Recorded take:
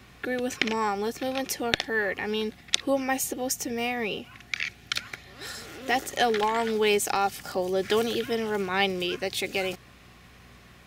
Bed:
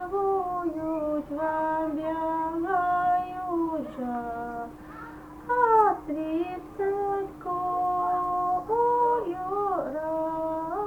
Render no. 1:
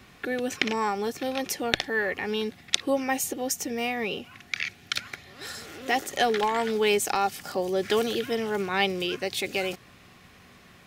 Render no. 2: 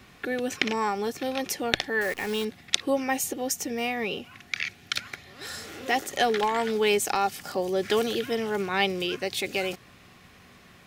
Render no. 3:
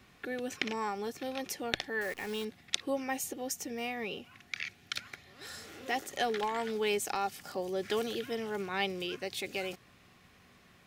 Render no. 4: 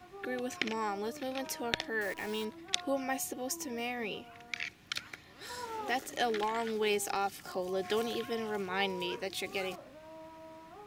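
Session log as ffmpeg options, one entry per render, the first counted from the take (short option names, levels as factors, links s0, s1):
-af "bandreject=f=60:t=h:w=4,bandreject=f=120:t=h:w=4"
-filter_complex "[0:a]asettb=1/sr,asplit=3[s0][s1][s2];[s0]atrim=end=2.014[s3];[s1]atrim=start=2.01:end=2.45,asetpts=PTS-STARTPTS,afade=t=in:d=0.004:c=qsin,afade=t=out:st=0.436:d=0.004:c=qsin,acrusher=bits=7:dc=4:mix=0:aa=0.000001[s4];[s2]atrim=start=2.446[s5];[s3][s4]acrossfade=d=0.004:c1=hsin:c2=qsin[s6];[s6][s5]acrossfade=d=0.004:c1=qsin:c2=hsin,asettb=1/sr,asplit=3[s7][s8][s9];[s7]atrim=end=5.484[s10];[s8]atrim=start=5.48:end=5.9,asetpts=PTS-STARTPTS,afade=t=in:d=0.004:c=qsin,afade=t=out:st=0.416:d=0.004:c=qsin,asplit=2[s11][s12];[s12]adelay=36,volume=0.596[s13];[s11][s13]amix=inputs=2:normalize=0,atrim=end_sample=18522[s14];[s9]atrim=start=5.896[s15];[s10][s14]acrossfade=d=0.004:c1=hsin:c2=qsin[s16];[s16][s15]acrossfade=d=0.004:c1=qsin:c2=hsin"
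-af "volume=0.398"
-filter_complex "[1:a]volume=0.0841[s0];[0:a][s0]amix=inputs=2:normalize=0"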